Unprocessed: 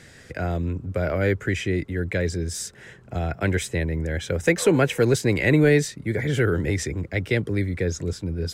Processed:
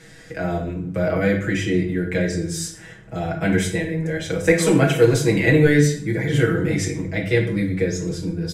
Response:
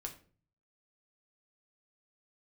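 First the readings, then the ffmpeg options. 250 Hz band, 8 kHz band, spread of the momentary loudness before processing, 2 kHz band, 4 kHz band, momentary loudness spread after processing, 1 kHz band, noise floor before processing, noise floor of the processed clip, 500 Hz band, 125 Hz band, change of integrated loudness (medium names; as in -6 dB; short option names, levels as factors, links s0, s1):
+4.5 dB, +3.0 dB, 10 LU, +3.0 dB, +3.0 dB, 11 LU, +3.0 dB, -49 dBFS, -43 dBFS, +3.0 dB, +2.5 dB, +3.5 dB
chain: -filter_complex "[0:a]aecho=1:1:6.2:0.99[s0];[1:a]atrim=start_sample=2205,asetrate=27342,aresample=44100[s1];[s0][s1]afir=irnorm=-1:irlink=0"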